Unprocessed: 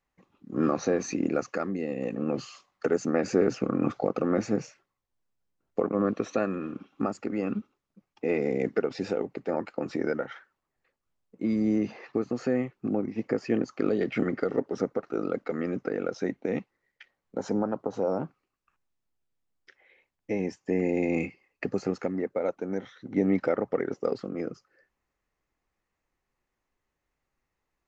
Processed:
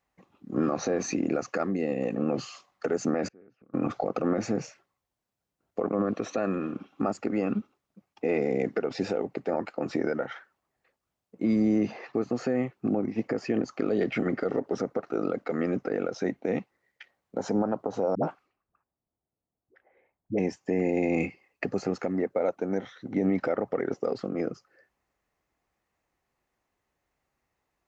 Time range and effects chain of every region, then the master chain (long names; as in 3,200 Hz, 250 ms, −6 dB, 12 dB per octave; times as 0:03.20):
0:03.28–0:03.74: gate with flip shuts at −30 dBFS, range −33 dB + low-pass filter 2,800 Hz + parametric band 730 Hz −5.5 dB 1.5 octaves
0:18.15–0:20.39: low-pass that shuts in the quiet parts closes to 830 Hz, open at −33.5 dBFS + dynamic equaliser 3,200 Hz, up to +4 dB, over −55 dBFS, Q 0.86 + all-pass dispersion highs, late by 78 ms, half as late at 420 Hz
whole clip: high-pass filter 47 Hz; parametric band 700 Hz +4.5 dB 0.52 octaves; brickwall limiter −19 dBFS; level +2.5 dB